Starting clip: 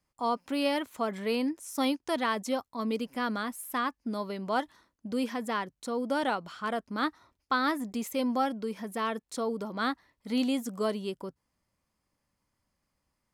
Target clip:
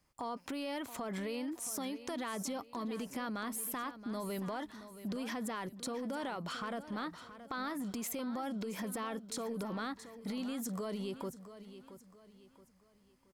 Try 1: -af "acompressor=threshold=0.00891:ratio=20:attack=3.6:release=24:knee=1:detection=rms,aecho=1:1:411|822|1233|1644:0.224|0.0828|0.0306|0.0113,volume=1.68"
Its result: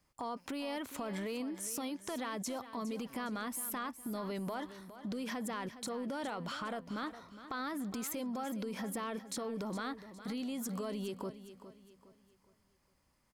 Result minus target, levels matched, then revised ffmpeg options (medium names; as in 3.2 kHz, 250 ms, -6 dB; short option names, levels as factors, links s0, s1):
echo 263 ms early
-af "acompressor=threshold=0.00891:ratio=20:attack=3.6:release=24:knee=1:detection=rms,aecho=1:1:674|1348|2022|2696:0.224|0.0828|0.0306|0.0113,volume=1.68"